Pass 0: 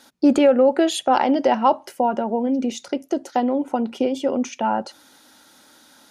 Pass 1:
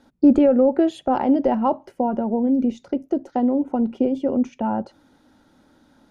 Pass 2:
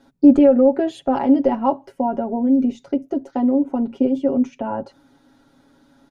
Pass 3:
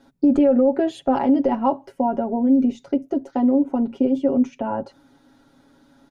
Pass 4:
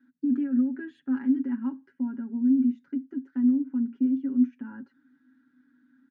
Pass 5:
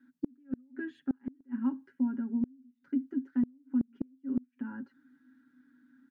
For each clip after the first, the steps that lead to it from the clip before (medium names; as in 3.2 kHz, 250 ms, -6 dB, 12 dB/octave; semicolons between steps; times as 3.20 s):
tilt EQ -4.5 dB/octave; trim -6 dB
comb 7.3 ms, depth 75%; trim -1 dB
peak limiter -9 dBFS, peak gain reduction 7 dB
two resonant band-passes 640 Hz, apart 2.7 oct; trim -2.5 dB
inverted gate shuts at -20 dBFS, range -35 dB